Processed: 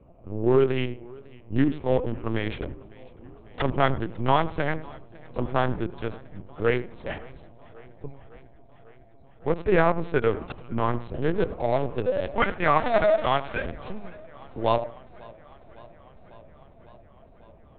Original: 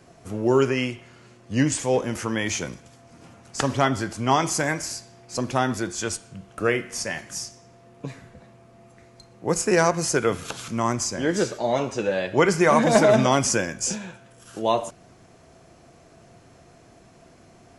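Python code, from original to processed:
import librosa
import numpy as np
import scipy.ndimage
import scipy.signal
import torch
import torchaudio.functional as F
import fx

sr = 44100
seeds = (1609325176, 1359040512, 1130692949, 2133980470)

y = fx.wiener(x, sr, points=25)
y = fx.fixed_phaser(y, sr, hz=1900.0, stages=8, at=(8.06, 9.47))
y = fx.highpass(y, sr, hz=600.0, slope=12, at=(12.32, 13.64))
y = fx.echo_filtered(y, sr, ms=89, feedback_pct=21, hz=1700.0, wet_db=-15)
y = fx.lpc_vocoder(y, sr, seeds[0], excitation='pitch_kept', order=10)
y = fx.echo_warbled(y, sr, ms=551, feedback_pct=73, rate_hz=2.8, cents=101, wet_db=-24)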